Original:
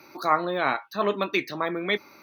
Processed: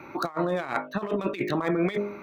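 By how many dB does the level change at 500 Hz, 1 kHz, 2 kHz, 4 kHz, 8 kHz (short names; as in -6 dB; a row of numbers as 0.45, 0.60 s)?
-0.5 dB, -6.0 dB, -6.0 dB, -9.0 dB, n/a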